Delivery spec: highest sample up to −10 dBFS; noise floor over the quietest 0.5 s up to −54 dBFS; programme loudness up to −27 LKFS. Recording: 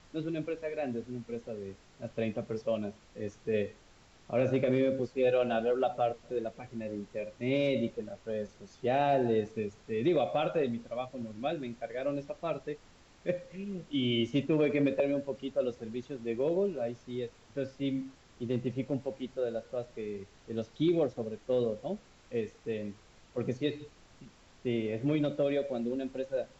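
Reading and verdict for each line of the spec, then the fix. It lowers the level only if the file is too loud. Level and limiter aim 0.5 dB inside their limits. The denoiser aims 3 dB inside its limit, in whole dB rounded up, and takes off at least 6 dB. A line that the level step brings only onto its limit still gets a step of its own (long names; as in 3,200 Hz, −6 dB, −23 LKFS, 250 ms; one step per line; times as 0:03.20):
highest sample −17.5 dBFS: in spec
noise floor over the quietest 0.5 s −59 dBFS: in spec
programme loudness −33.5 LKFS: in spec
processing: no processing needed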